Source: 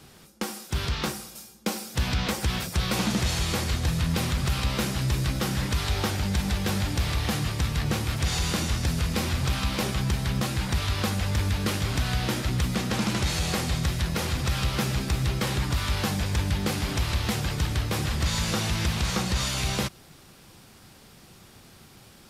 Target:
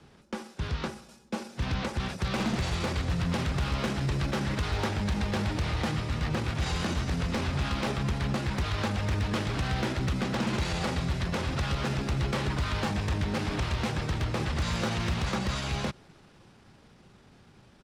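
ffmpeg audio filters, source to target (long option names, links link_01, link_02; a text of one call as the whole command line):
ffmpeg -i in.wav -filter_complex "[0:a]lowpass=frequency=11000:width=0.5412,lowpass=frequency=11000:width=1.3066,aemphasis=mode=reproduction:type=75fm,acrossover=split=230[link_01][link_02];[link_02]dynaudnorm=framelen=170:gausssize=31:maxgain=4dB[link_03];[link_01][link_03]amix=inputs=2:normalize=0,atempo=1.2,aeval=exprs='0.133*(abs(mod(val(0)/0.133+3,4)-2)-1)':channel_layout=same,asetrate=45938,aresample=44100,volume=-4dB" out.wav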